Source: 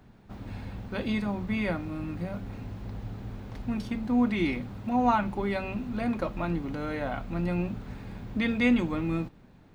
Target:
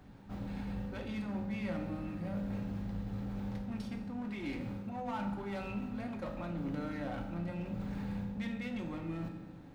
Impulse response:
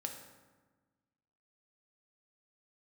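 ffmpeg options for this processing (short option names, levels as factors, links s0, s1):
-filter_complex "[0:a]areverse,acompressor=threshold=0.0141:ratio=6,areverse,asoftclip=type=hard:threshold=0.0168[s0];[1:a]atrim=start_sample=2205[s1];[s0][s1]afir=irnorm=-1:irlink=0,volume=1.19"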